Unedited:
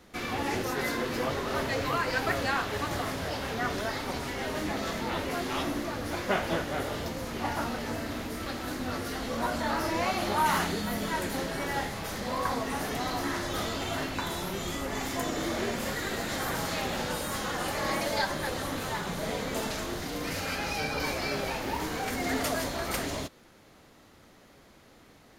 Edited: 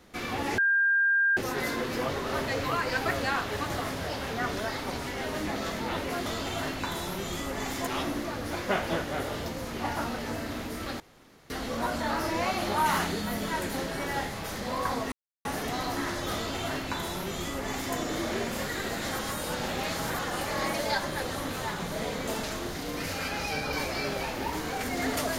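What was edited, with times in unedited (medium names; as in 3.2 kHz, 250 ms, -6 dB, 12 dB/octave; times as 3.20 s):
0.58 s: add tone 1.6 kHz -20.5 dBFS 0.79 s
8.60–9.10 s: room tone
12.72 s: insert silence 0.33 s
13.61–15.22 s: copy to 5.47 s
16.46–17.46 s: reverse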